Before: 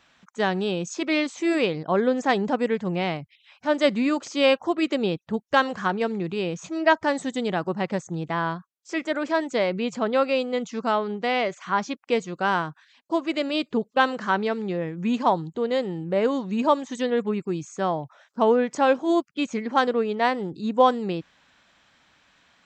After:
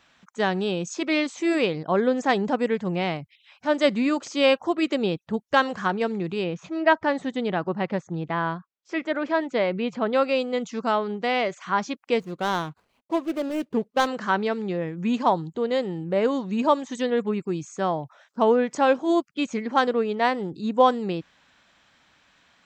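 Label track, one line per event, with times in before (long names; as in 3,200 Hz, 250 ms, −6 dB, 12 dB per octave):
6.440000	10.130000	low-pass filter 3,600 Hz
12.200000	14.070000	running median over 25 samples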